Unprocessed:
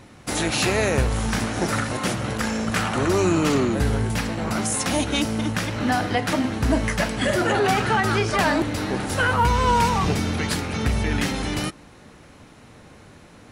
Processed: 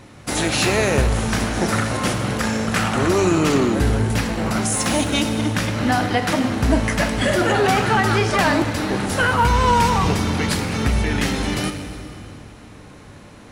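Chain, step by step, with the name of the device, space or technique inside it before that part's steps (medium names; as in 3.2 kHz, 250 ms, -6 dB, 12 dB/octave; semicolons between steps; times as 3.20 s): saturated reverb return (on a send at -4 dB: reverberation RT60 2.3 s, pre-delay 23 ms + saturation -23 dBFS, distortion -9 dB); on the sum: trim +2.5 dB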